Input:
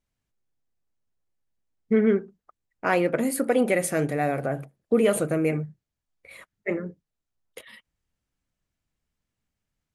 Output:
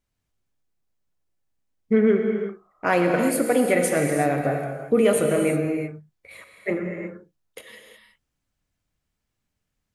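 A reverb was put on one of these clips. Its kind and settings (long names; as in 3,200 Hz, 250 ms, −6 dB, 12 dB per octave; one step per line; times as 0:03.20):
reverb whose tail is shaped and stops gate 390 ms flat, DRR 3 dB
level +1.5 dB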